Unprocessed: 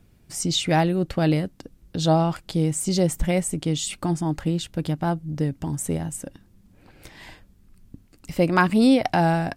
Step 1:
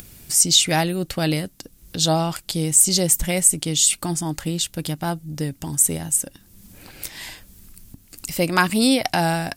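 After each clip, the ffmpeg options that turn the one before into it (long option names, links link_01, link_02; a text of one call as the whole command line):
ffmpeg -i in.wav -af "acompressor=mode=upward:threshold=-34dB:ratio=2.5,crystalizer=i=5.5:c=0,volume=-2dB" out.wav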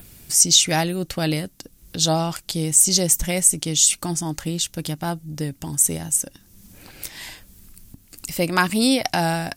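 ffmpeg -i in.wav -af "adynamicequalizer=threshold=0.0158:dfrequency=6000:dqfactor=4.1:tfrequency=6000:tqfactor=4.1:attack=5:release=100:ratio=0.375:range=3.5:mode=boostabove:tftype=bell,volume=-1dB" out.wav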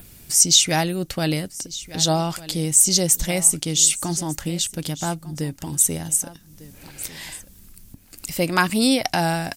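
ffmpeg -i in.wav -af "aecho=1:1:1200:0.133" out.wav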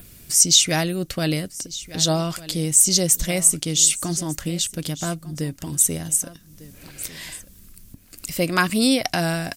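ffmpeg -i in.wav -af "bandreject=frequency=850:width=5.1" out.wav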